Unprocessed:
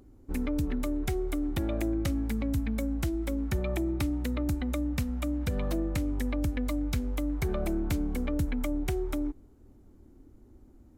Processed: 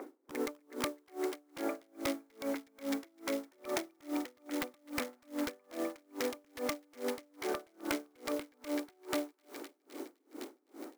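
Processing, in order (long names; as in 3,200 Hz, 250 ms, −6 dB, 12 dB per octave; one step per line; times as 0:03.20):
ceiling on every frequency bin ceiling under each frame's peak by 14 dB
Chebyshev band-pass filter 280–2,200 Hz, order 4
downward compressor 20 to 1, threshold −45 dBFS, peak gain reduction 17 dB
wrap-around overflow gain 38 dB
noise that follows the level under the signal 20 dB
on a send: feedback echo with a high-pass in the loop 256 ms, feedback 81%, high-pass 790 Hz, level −7 dB
on the sum: tremolo with a sine in dB 2.4 Hz, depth 36 dB
level +16 dB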